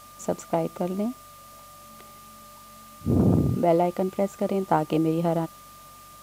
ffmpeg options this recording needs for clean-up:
ffmpeg -i in.wav -af "bandreject=frequency=47:width_type=h:width=4,bandreject=frequency=94:width_type=h:width=4,bandreject=frequency=141:width_type=h:width=4,bandreject=frequency=1200:width=30,afftdn=noise_reduction=22:noise_floor=-48" out.wav

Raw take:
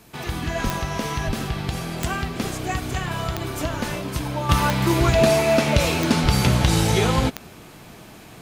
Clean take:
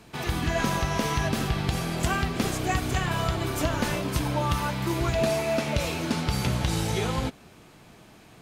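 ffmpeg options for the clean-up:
ffmpeg -i in.wav -filter_complex "[0:a]adeclick=threshold=4,asplit=3[link_01][link_02][link_03];[link_01]afade=type=out:start_time=0.63:duration=0.02[link_04];[link_02]highpass=frequency=140:width=0.5412,highpass=frequency=140:width=1.3066,afade=type=in:start_time=0.63:duration=0.02,afade=type=out:start_time=0.75:duration=0.02[link_05];[link_03]afade=type=in:start_time=0.75:duration=0.02[link_06];[link_04][link_05][link_06]amix=inputs=3:normalize=0,asplit=3[link_07][link_08][link_09];[link_07]afade=type=out:start_time=1.26:duration=0.02[link_10];[link_08]highpass=frequency=140:width=0.5412,highpass=frequency=140:width=1.3066,afade=type=in:start_time=1.26:duration=0.02,afade=type=out:start_time=1.38:duration=0.02[link_11];[link_09]afade=type=in:start_time=1.38:duration=0.02[link_12];[link_10][link_11][link_12]amix=inputs=3:normalize=0,asplit=3[link_13][link_14][link_15];[link_13]afade=type=out:start_time=6.22:duration=0.02[link_16];[link_14]highpass=frequency=140:width=0.5412,highpass=frequency=140:width=1.3066,afade=type=in:start_time=6.22:duration=0.02,afade=type=out:start_time=6.34:duration=0.02[link_17];[link_15]afade=type=in:start_time=6.34:duration=0.02[link_18];[link_16][link_17][link_18]amix=inputs=3:normalize=0,agate=range=-21dB:threshold=-35dB,asetnsamples=nb_out_samples=441:pad=0,asendcmd='4.49 volume volume -8dB',volume=0dB" out.wav

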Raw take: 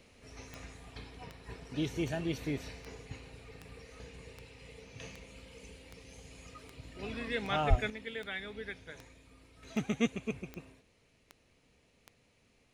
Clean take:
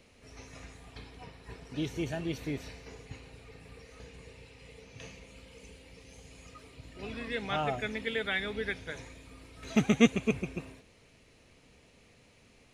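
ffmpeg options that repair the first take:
ffmpeg -i in.wav -filter_complex "[0:a]adeclick=threshold=4,asplit=3[link_01][link_02][link_03];[link_01]afade=type=out:start_time=7.69:duration=0.02[link_04];[link_02]highpass=frequency=140:width=0.5412,highpass=frequency=140:width=1.3066,afade=type=in:start_time=7.69:duration=0.02,afade=type=out:start_time=7.81:duration=0.02[link_05];[link_03]afade=type=in:start_time=7.81:duration=0.02[link_06];[link_04][link_05][link_06]amix=inputs=3:normalize=0,asetnsamples=nb_out_samples=441:pad=0,asendcmd='7.9 volume volume 8dB',volume=0dB" out.wav

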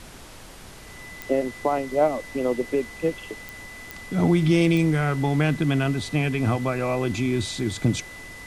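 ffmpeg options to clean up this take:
ffmpeg -i in.wav -af "adeclick=threshold=4,bandreject=frequency=2000:width=30,afftdn=noise_reduction=27:noise_floor=-42" out.wav

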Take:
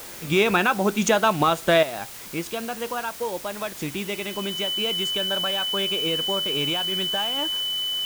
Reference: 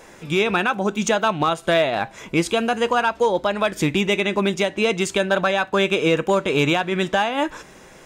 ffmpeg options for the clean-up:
ffmpeg -i in.wav -af "bandreject=frequency=3000:width=30,afwtdn=0.01,asetnsamples=nb_out_samples=441:pad=0,asendcmd='1.83 volume volume 10dB',volume=0dB" out.wav

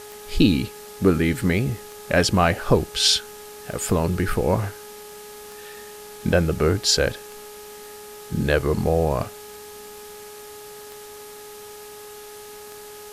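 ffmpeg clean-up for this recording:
ffmpeg -i in.wav -af "adeclick=threshold=4,bandreject=frequency=418.2:width_type=h:width=4,bandreject=frequency=836.4:width_type=h:width=4,bandreject=frequency=1254.6:width_type=h:width=4,bandreject=frequency=1672.8:width_type=h:width=4,afftdn=noise_reduction=27:noise_floor=-40" out.wav

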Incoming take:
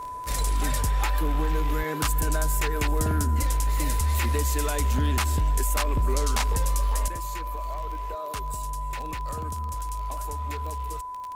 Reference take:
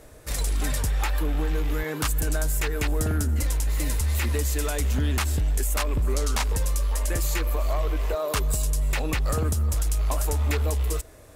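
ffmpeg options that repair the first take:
ffmpeg -i in.wav -af "adeclick=threshold=4,bandreject=frequency=1000:width=30,asetnsamples=nb_out_samples=441:pad=0,asendcmd='7.08 volume volume 9.5dB',volume=0dB" out.wav

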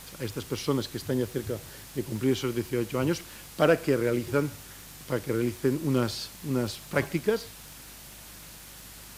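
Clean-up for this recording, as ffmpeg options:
ffmpeg -i in.wav -af "adeclick=threshold=4,bandreject=frequency=50.9:width_type=h:width=4,bandreject=frequency=101.8:width_type=h:width=4,bandreject=frequency=152.7:width_type=h:width=4,bandreject=frequency=203.6:width_type=h:width=4,bandreject=frequency=254.5:width_type=h:width=4,bandreject=frequency=305.4:width_type=h:width=4,afwtdn=0.005" out.wav

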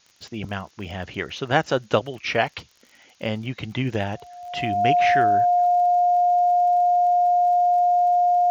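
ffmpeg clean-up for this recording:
ffmpeg -i in.wav -af "adeclick=threshold=4,bandreject=frequency=710:width=30,agate=range=-21dB:threshold=-45dB" out.wav

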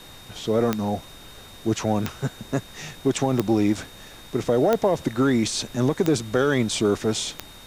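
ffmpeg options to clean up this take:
ffmpeg -i in.wav -af "adeclick=threshold=4,bandreject=frequency=3700:width=30,afftdn=noise_reduction=24:noise_floor=-44" out.wav

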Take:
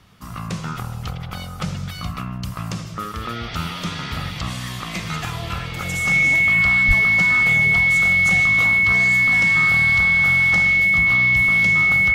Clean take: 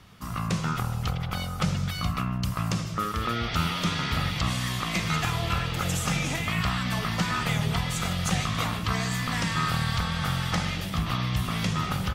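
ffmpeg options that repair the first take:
ffmpeg -i in.wav -filter_complex "[0:a]bandreject=frequency=2200:width=30,asplit=3[link_01][link_02][link_03];[link_01]afade=type=out:start_time=6.87:duration=0.02[link_04];[link_02]highpass=frequency=140:width=0.5412,highpass=frequency=140:width=1.3066,afade=type=in:start_time=6.87:duration=0.02,afade=type=out:start_time=6.99:duration=0.02[link_05];[link_03]afade=type=in:start_time=6.99:duration=0.02[link_06];[link_04][link_05][link_06]amix=inputs=3:normalize=0" out.wav

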